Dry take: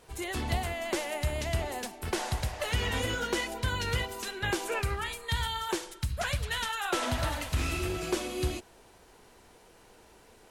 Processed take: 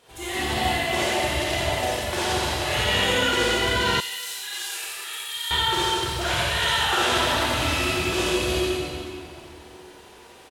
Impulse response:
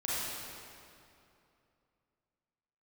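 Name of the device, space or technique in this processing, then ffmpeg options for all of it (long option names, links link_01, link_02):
PA in a hall: -filter_complex "[0:a]highpass=frequency=170:poles=1,equalizer=frequency=3300:width_type=o:width=0.8:gain=6,aecho=1:1:87:0.631[link_01];[1:a]atrim=start_sample=2205[link_02];[link_01][link_02]afir=irnorm=-1:irlink=0,asettb=1/sr,asplit=3[link_03][link_04][link_05];[link_03]atrim=end=4.004[link_06];[link_04]atrim=start=4:end=5.51,asetpts=PTS-STARTPTS,afade=type=in:duration=0.004:curve=qsin,afade=type=out:start_time=1.506:duration=0.004:curve=qsin,aderivative[link_07];[link_05]atrim=start=5.506[link_08];[link_06][link_07]acrossfade=duration=0.004:curve1=hsin:curve2=qsin[link_09];[link_09][link_08]acrossfade=duration=0.004:curve1=qsin:curve2=hsin,volume=1.5dB"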